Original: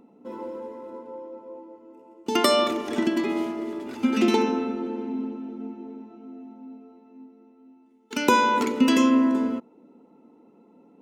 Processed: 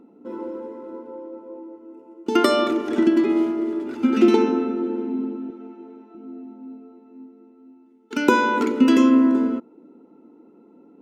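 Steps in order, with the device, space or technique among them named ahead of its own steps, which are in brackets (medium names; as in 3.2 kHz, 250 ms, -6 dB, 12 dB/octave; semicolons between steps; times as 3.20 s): 5.50–6.15 s: frequency weighting A; inside a helmet (treble shelf 5.5 kHz -6 dB; small resonant body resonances 330/1400 Hz, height 9 dB, ringing for 20 ms); trim -1 dB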